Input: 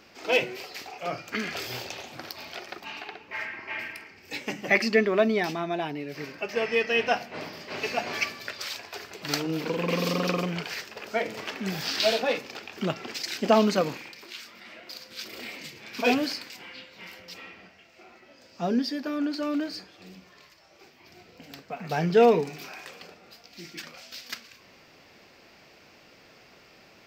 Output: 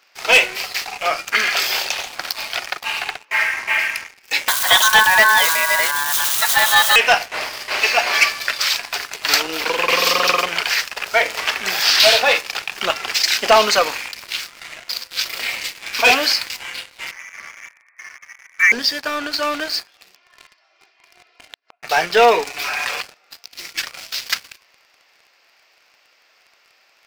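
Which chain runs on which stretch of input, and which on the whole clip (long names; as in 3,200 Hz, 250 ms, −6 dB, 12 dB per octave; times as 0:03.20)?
0:04.48–0:06.96: spike at every zero crossing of −20.5 dBFS + ring modulation 1,300 Hz
0:17.11–0:18.72: mu-law and A-law mismatch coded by mu + voice inversion scrambler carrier 2,500 Hz + high-pass filter 1,400 Hz
0:20.15–0:21.83: band-pass filter 300–4,200 Hz + comb filter 2.9 ms, depth 66% + gate with flip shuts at −36 dBFS, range −30 dB
0:22.53–0:23.01: high-shelf EQ 5,000 Hz −7 dB + comb filter 6.9 ms, depth 55% + envelope flattener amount 100%
whole clip: high-pass filter 890 Hz 12 dB per octave; leveller curve on the samples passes 3; level +5.5 dB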